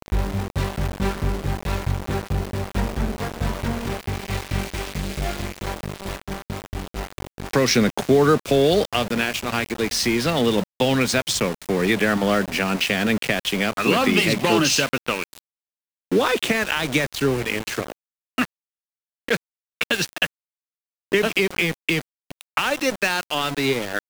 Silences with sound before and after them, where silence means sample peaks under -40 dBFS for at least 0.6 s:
15.39–16.12 s
18.45–19.28 s
20.27–21.12 s

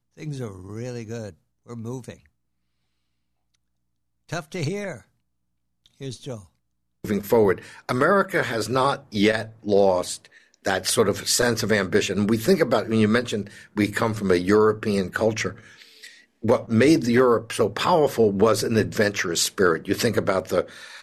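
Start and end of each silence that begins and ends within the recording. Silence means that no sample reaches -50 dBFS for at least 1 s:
2.26–3.55 s

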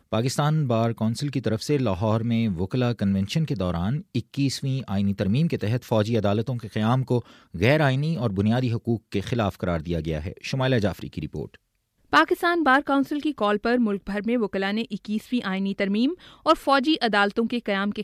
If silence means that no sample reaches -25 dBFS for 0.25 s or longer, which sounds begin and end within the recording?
7.56–11.45 s
12.13–16.12 s

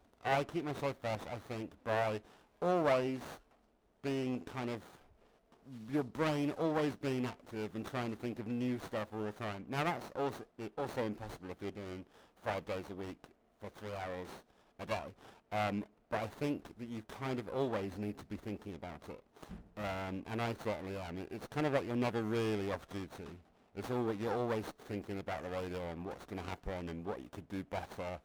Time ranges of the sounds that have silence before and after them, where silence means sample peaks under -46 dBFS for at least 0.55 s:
4.04–4.86 s

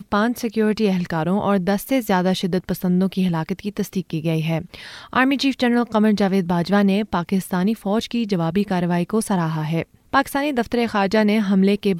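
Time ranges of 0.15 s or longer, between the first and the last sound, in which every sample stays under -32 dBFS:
9.83–10.13 s

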